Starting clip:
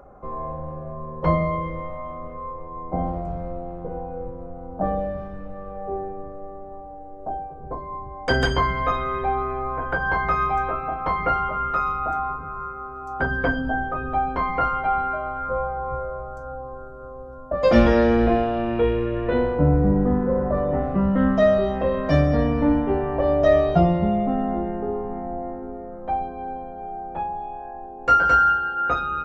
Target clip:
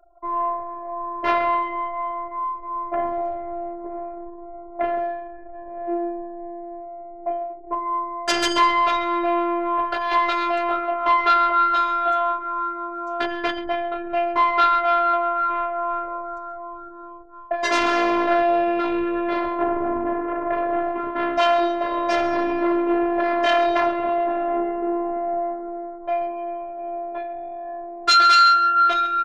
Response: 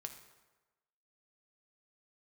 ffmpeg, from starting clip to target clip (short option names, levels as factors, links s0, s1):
-filter_complex "[0:a]aeval=exprs='0.794*sin(PI/2*5.01*val(0)/0.794)':c=same,bass=f=250:g=-15,treble=f=4000:g=5,asplit=2[s0][s1];[s1]aecho=0:1:133:0.188[s2];[s0][s2]amix=inputs=2:normalize=0,afftfilt=real='hypot(re,im)*cos(PI*b)':imag='0':win_size=512:overlap=0.75,anlmdn=631,adynamicequalizer=threshold=0.0282:dfrequency=4400:dqfactor=0.7:tfrequency=4400:tqfactor=0.7:attack=5:release=100:ratio=0.375:range=2.5:mode=cutabove:tftype=highshelf,volume=0.376"